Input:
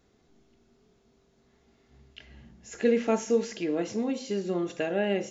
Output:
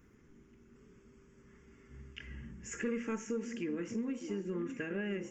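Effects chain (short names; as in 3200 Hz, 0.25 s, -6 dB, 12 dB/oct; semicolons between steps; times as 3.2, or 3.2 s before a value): 2.71–4.25 high shelf 5900 Hz -> 4400 Hz +4 dB; soft clip -16 dBFS, distortion -20 dB; fixed phaser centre 1700 Hz, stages 4; delay with a stepping band-pass 0.602 s, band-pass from 280 Hz, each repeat 1.4 oct, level -9 dB; compressor 2:1, threshold -50 dBFS, peak gain reduction 13.5 dB; gain +6.5 dB; Opus 24 kbps 48000 Hz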